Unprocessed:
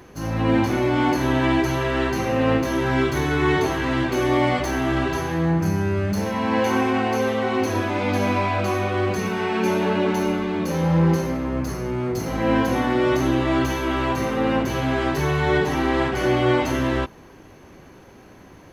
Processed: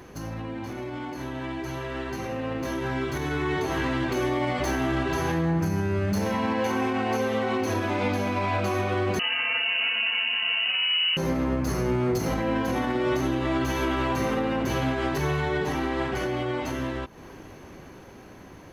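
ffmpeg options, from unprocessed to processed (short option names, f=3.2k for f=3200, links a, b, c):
-filter_complex "[0:a]asettb=1/sr,asplit=3[a][b][c];[a]atrim=end=9.194[d];[b]atrim=start=9.19:end=11.17,asetpts=PTS-STARTPTS,afade=t=in:d=0.004:c=qsin,afade=t=out:st=1.976:d=0.004:c=qsin,lowpass=f=2.6k:t=q:w=0.5098,lowpass=f=2.6k:t=q:w=0.6013,lowpass=f=2.6k:t=q:w=0.9,lowpass=f=2.6k:t=q:w=2.563,afreqshift=-3100[e];[c]atrim=start=11.166[f];[d][e]acrossfade=d=0.004:c1=hsin:c2=qsin[g];[g][f]acrossfade=d=0.004:c1=qsin:c2=hsin,acompressor=threshold=-32dB:ratio=2.5,alimiter=level_in=2dB:limit=-24dB:level=0:latency=1:release=167,volume=-2dB,dynaudnorm=f=340:g=17:m=9dB"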